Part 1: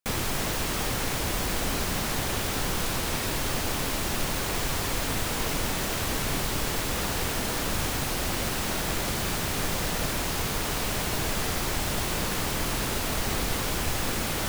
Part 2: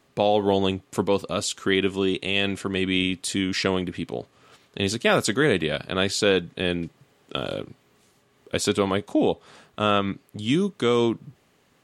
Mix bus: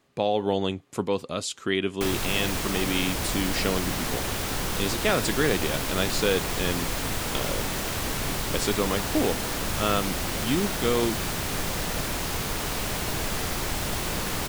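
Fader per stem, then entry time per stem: −0.5, −4.0 decibels; 1.95, 0.00 seconds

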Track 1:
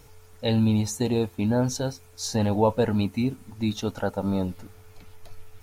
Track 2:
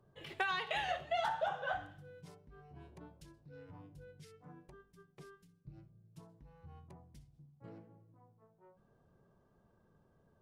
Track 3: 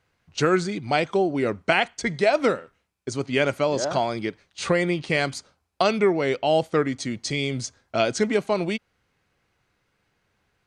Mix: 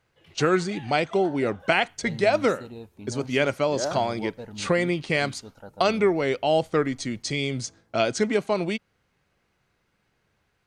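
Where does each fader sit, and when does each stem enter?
−16.5, −8.0, −1.0 decibels; 1.60, 0.00, 0.00 seconds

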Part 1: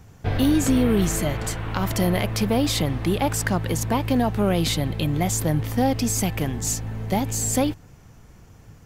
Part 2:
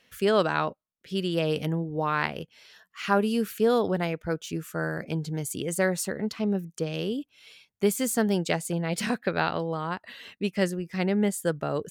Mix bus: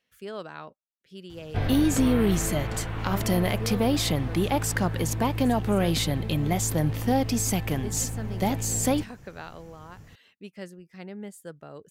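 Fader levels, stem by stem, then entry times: −2.5, −14.5 decibels; 1.30, 0.00 seconds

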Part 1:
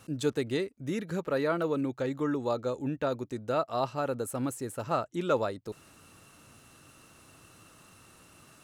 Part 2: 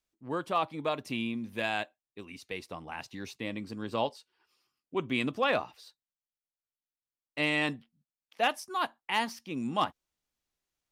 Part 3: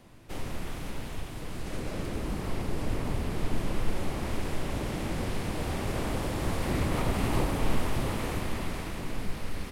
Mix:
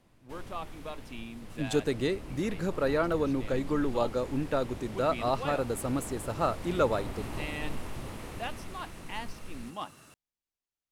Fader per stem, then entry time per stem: +1.0, −10.0, −10.0 decibels; 1.50, 0.00, 0.00 seconds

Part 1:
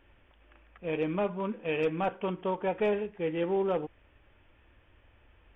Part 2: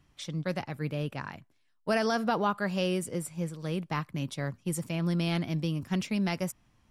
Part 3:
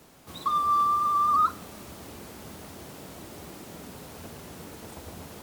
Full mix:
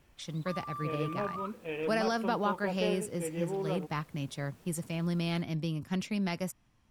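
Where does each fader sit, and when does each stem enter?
−6.5, −3.0, −18.0 decibels; 0.00, 0.00, 0.00 seconds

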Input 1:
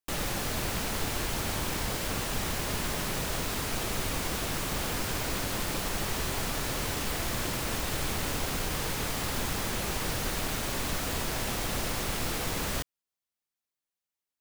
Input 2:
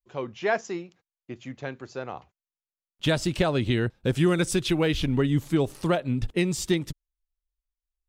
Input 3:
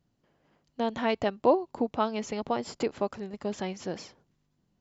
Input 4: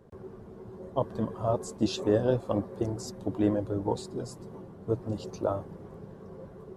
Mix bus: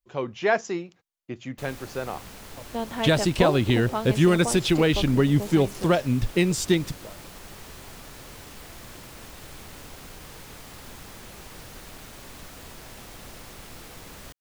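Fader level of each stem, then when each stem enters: −11.5, +3.0, −1.5, −16.5 decibels; 1.50, 0.00, 1.95, 1.60 seconds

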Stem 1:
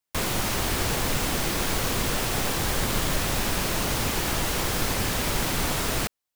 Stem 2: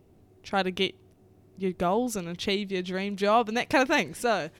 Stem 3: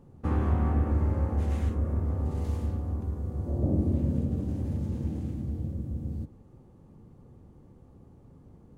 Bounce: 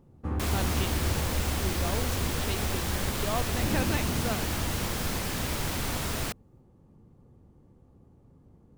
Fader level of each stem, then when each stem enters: −6.0, −10.0, −4.0 decibels; 0.25, 0.00, 0.00 seconds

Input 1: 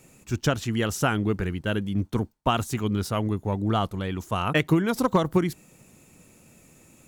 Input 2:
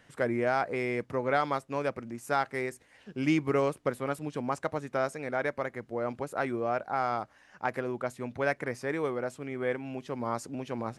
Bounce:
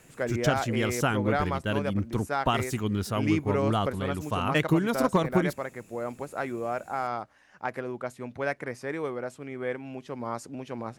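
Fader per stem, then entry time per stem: −2.5, −1.0 decibels; 0.00, 0.00 seconds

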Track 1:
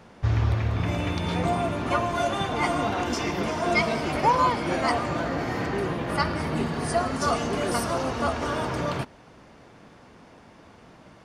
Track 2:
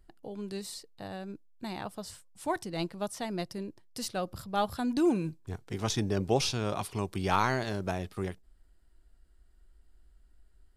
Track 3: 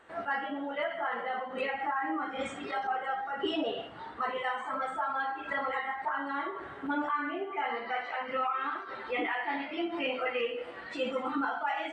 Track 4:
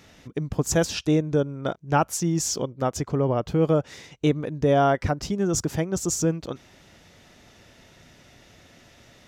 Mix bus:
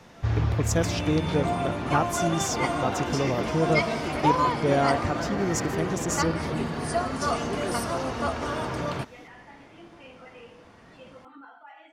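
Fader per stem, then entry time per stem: −2.0, −18.0, −16.5, −4.0 decibels; 0.00, 0.00, 0.00, 0.00 seconds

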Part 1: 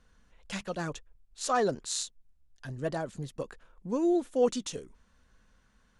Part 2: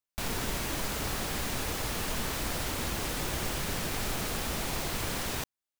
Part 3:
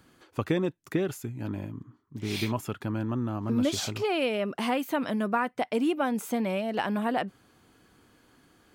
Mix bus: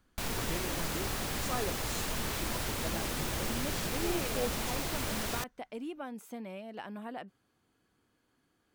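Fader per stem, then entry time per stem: −10.0, −2.0, −14.0 decibels; 0.00, 0.00, 0.00 seconds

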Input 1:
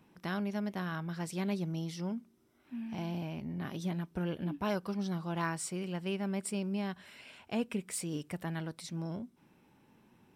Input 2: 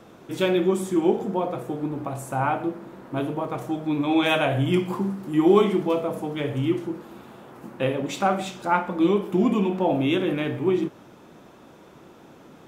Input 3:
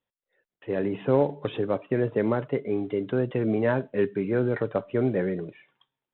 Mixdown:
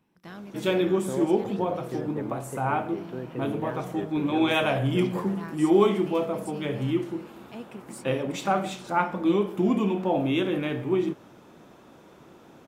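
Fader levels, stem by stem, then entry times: −7.0, −2.5, −11.0 decibels; 0.00, 0.25, 0.00 seconds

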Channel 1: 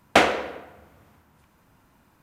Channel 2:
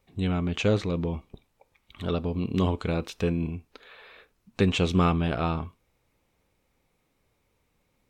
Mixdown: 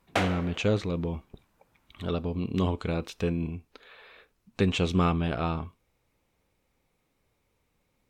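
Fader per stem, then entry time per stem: −10.5, −2.0 decibels; 0.00, 0.00 seconds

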